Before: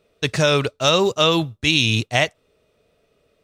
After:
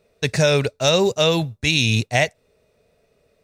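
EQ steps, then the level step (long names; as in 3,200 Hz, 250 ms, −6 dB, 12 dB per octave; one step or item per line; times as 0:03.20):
thirty-one-band graphic EQ 315 Hz −7 dB, 1,250 Hz −6 dB, 3,150 Hz −9 dB
dynamic equaliser 1,100 Hz, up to −6 dB, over −40 dBFS, Q 2.5
+2.0 dB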